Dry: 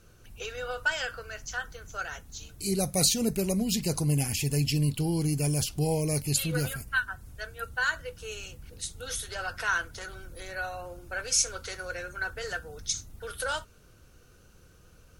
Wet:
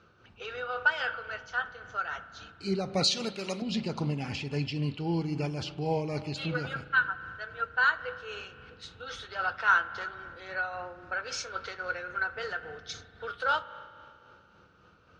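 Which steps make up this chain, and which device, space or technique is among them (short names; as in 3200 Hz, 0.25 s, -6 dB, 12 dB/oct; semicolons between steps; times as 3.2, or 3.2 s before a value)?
3.04–3.62 tilt +4 dB/oct; combo amplifier with spring reverb and tremolo (spring tank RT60 2.5 s, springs 36 ms, chirp 55 ms, DRR 12 dB; tremolo 3.7 Hz, depth 40%; speaker cabinet 110–4300 Hz, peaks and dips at 140 Hz -4 dB, 880 Hz +5 dB, 1300 Hz +9 dB)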